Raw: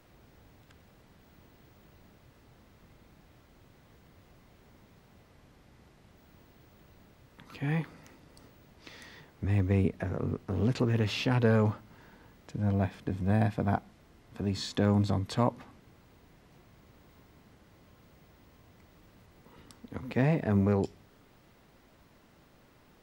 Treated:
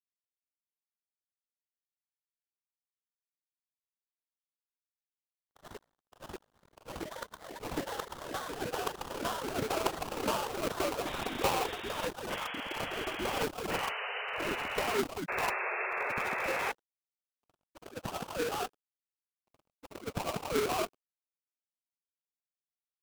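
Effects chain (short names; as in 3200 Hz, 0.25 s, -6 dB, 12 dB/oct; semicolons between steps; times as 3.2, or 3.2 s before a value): sine-wave speech; expander -53 dBFS; in parallel at -0.5 dB: compressor 5:1, threshold -34 dBFS, peak gain reduction 14.5 dB; on the sum: formant-preserving pitch shift +9.5 st; sample-rate reducer 1800 Hz, jitter 20%; crossover distortion -49.5 dBFS; painted sound noise, 15.28–16.72, 360–2700 Hz -26 dBFS; echoes that change speed 84 ms, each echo +2 st, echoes 3; gain -8.5 dB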